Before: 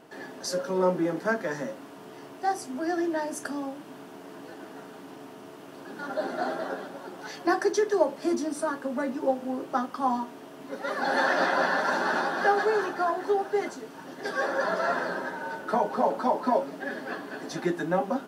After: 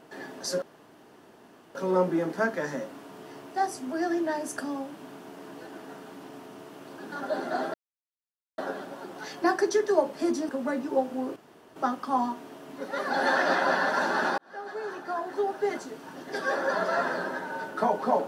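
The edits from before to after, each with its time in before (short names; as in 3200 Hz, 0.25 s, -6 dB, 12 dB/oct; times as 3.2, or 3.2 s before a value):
0.62 insert room tone 1.13 s
6.61 insert silence 0.84 s
8.52–8.8 cut
9.67 insert room tone 0.40 s
12.29–13.72 fade in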